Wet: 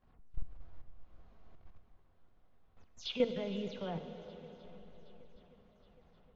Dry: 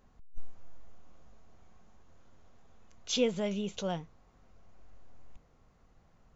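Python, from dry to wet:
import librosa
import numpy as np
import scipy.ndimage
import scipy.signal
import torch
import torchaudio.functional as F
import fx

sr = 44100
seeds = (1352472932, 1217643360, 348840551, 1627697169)

y = fx.spec_delay(x, sr, highs='early', ms=132)
y = scipy.signal.sosfilt(scipy.signal.butter(4, 4400.0, 'lowpass', fs=sr, output='sos'), y)
y = fx.level_steps(y, sr, step_db=13)
y = fx.echo_swing(y, sr, ms=769, ratio=1.5, feedback_pct=53, wet_db=-22)
y = fx.rev_plate(y, sr, seeds[0], rt60_s=4.2, hf_ratio=0.8, predelay_ms=0, drr_db=7.5)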